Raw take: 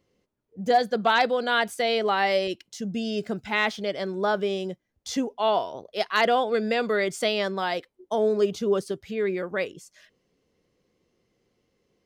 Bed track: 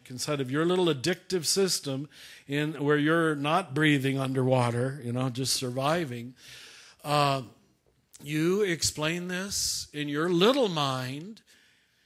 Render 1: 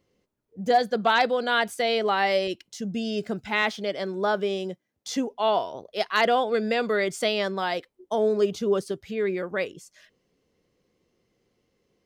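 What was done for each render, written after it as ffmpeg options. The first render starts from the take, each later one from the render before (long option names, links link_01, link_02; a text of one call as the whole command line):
ffmpeg -i in.wav -filter_complex "[0:a]asettb=1/sr,asplit=3[link_01][link_02][link_03];[link_01]atrim=end=3.624[link_04];[link_02]atrim=start=3.62:end=5.31,asetpts=PTS-STARTPTS,afade=type=in:duration=0.004:curve=qsin,afade=type=out:start_time=1.686:duration=0.004:curve=qsin,highpass=140[link_05];[link_03]atrim=start=5.306[link_06];[link_04][link_05]acrossfade=duration=0.004:curve1=hsin:curve2=qsin[link_07];[link_07][link_06]acrossfade=duration=0.004:curve1=qsin:curve2=hsin" out.wav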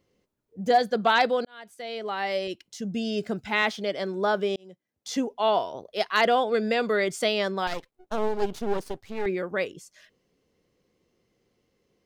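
ffmpeg -i in.wav -filter_complex "[0:a]asettb=1/sr,asplit=3[link_01][link_02][link_03];[link_01]atrim=end=7.674[link_04];[link_02]atrim=start=7.67:end=9.26,asetpts=PTS-STARTPTS,afade=type=in:duration=0.004:curve=qsin,afade=type=out:start_time=1.586:duration=0.004:curve=qsin,aeval=exprs='max(val(0),0)':channel_layout=same[link_05];[link_03]atrim=start=9.256[link_06];[link_04][link_05]acrossfade=duration=0.004:curve1=hsin:curve2=qsin[link_07];[link_07][link_06]acrossfade=duration=0.004:curve1=qsin:curve2=hsin,asplit=3[link_08][link_09][link_10];[link_08]atrim=end=1.45,asetpts=PTS-STARTPTS,afade=type=out:start_time=1.446:duration=0.004:curve=hsin[link_11];[link_09]atrim=start=1.45:end=4.56,asetpts=PTS-STARTPTS,afade=type=in:duration=1.56,afade=type=out:start_time=3.106:duration=0.004:curve=hsin[link_12];[link_10]atrim=start=4.56,asetpts=PTS-STARTPTS,afade=type=in:duration=0.64[link_13];[link_11][link_12][link_13]concat=n=3:v=0:a=1" out.wav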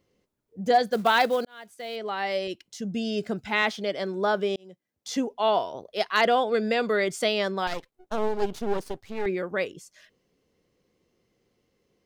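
ffmpeg -i in.wav -filter_complex "[0:a]asettb=1/sr,asplit=3[link_01][link_02][link_03];[link_01]atrim=end=0.874[link_04];[link_02]atrim=start=0.87:end=1.96,asetpts=PTS-STARTPTS,afade=type=in:duration=0.004:curve=qsin,afade=type=out:start_time=1.086:duration=0.004:curve=qsin,acrusher=bits=6:mode=log:mix=0:aa=0.000001[link_05];[link_03]atrim=start=1.956[link_06];[link_04][link_05]acrossfade=duration=0.004:curve1=hsin:curve2=qsin[link_07];[link_07][link_06]acrossfade=duration=0.004:curve1=qsin:curve2=hsin" out.wav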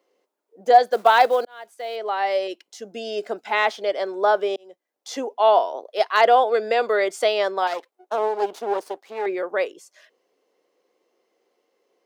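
ffmpeg -i in.wav -af "highpass=frequency=320:width=0.5412,highpass=frequency=320:width=1.3066,equalizer=frequency=760:width_type=o:width=1.6:gain=8" out.wav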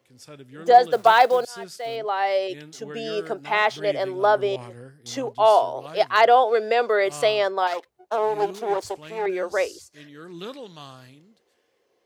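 ffmpeg -i in.wav -i bed.wav -filter_complex "[1:a]volume=-14dB[link_01];[0:a][link_01]amix=inputs=2:normalize=0" out.wav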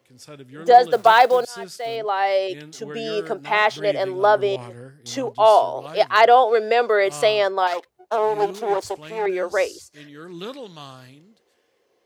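ffmpeg -i in.wav -af "volume=2.5dB,alimiter=limit=-2dB:level=0:latency=1" out.wav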